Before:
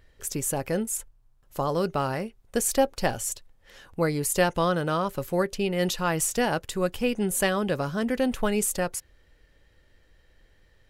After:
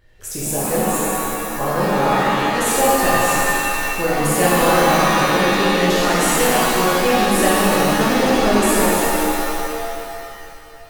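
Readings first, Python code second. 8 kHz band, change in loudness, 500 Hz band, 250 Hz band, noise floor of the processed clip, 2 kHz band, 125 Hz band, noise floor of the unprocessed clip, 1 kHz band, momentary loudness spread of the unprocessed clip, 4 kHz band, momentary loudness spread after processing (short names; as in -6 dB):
+8.5 dB, +10.0 dB, +9.5 dB, +9.5 dB, -37 dBFS, +14.0 dB, +7.0 dB, -61 dBFS, +14.0 dB, 7 LU, +13.5 dB, 8 LU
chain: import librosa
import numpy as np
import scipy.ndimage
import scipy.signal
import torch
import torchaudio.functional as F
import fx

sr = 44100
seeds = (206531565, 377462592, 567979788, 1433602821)

y = fx.rev_shimmer(x, sr, seeds[0], rt60_s=2.6, semitones=7, shimmer_db=-2, drr_db=-8.0)
y = F.gain(torch.from_numpy(y), -1.0).numpy()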